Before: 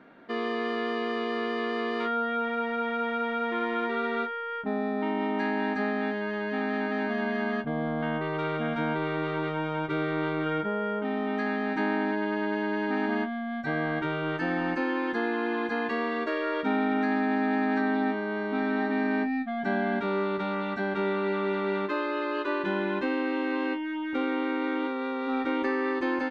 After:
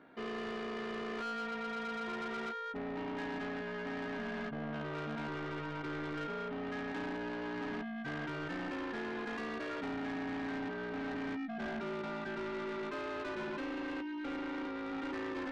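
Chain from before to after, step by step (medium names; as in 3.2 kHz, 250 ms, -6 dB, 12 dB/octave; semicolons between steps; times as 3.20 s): granular stretch 0.59×, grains 35 ms; saturation -31.5 dBFS, distortion -9 dB; trim -4.5 dB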